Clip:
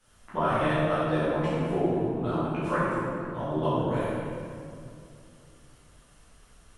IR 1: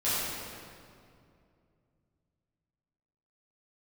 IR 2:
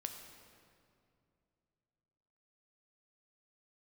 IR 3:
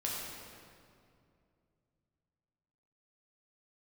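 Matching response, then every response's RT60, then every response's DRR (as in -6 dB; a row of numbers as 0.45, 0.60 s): 1; 2.4, 2.5, 2.4 s; -12.5, 4.5, -4.5 dB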